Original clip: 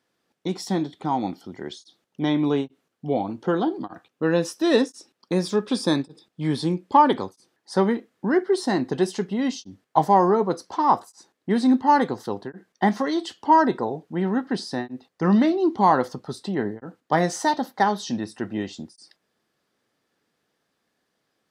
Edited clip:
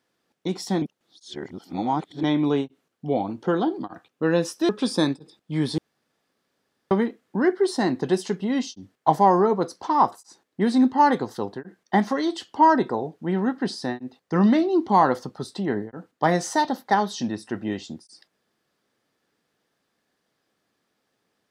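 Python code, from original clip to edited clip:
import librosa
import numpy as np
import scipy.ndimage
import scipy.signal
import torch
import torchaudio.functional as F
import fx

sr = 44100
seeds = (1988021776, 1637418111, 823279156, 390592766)

y = fx.edit(x, sr, fx.reverse_span(start_s=0.82, length_s=1.41),
    fx.cut(start_s=4.69, length_s=0.89),
    fx.room_tone_fill(start_s=6.67, length_s=1.13), tone=tone)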